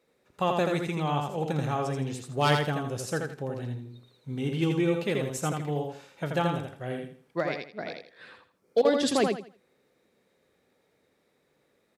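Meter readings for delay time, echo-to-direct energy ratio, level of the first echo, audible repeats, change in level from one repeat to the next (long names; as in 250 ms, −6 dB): 82 ms, −3.5 dB, −4.0 dB, 3, −11.5 dB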